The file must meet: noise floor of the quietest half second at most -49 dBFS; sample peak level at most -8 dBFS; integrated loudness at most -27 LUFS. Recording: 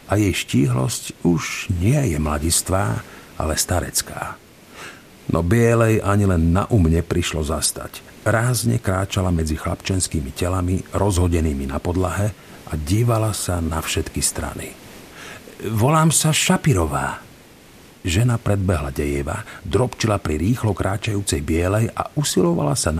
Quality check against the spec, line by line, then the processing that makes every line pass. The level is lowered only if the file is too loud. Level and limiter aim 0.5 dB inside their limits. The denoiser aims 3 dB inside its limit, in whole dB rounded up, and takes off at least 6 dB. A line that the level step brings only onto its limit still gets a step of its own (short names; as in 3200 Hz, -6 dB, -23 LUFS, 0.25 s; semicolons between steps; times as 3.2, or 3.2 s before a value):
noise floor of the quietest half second -46 dBFS: fail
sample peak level -3.0 dBFS: fail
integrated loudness -20.0 LUFS: fail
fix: gain -7.5 dB